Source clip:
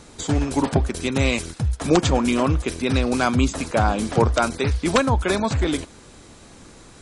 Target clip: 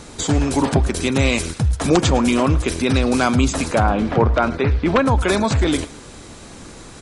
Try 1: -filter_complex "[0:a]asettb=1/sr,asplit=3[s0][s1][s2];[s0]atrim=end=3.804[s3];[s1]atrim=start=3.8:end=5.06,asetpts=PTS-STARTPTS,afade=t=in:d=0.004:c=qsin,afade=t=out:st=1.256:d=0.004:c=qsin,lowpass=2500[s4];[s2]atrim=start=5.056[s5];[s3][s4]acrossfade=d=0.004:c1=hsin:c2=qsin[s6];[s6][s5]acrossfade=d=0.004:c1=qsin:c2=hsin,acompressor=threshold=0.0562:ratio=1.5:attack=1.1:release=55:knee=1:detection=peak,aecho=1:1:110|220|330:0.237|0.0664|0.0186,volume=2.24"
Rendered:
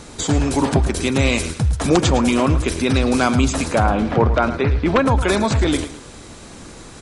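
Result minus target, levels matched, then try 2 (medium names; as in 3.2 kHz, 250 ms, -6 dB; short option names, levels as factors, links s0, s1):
echo-to-direct +6.5 dB
-filter_complex "[0:a]asettb=1/sr,asplit=3[s0][s1][s2];[s0]atrim=end=3.804[s3];[s1]atrim=start=3.8:end=5.06,asetpts=PTS-STARTPTS,afade=t=in:d=0.004:c=qsin,afade=t=out:st=1.256:d=0.004:c=qsin,lowpass=2500[s4];[s2]atrim=start=5.056[s5];[s3][s4]acrossfade=d=0.004:c1=hsin:c2=qsin[s6];[s6][s5]acrossfade=d=0.004:c1=qsin:c2=hsin,acompressor=threshold=0.0562:ratio=1.5:attack=1.1:release=55:knee=1:detection=peak,aecho=1:1:110|220:0.112|0.0314,volume=2.24"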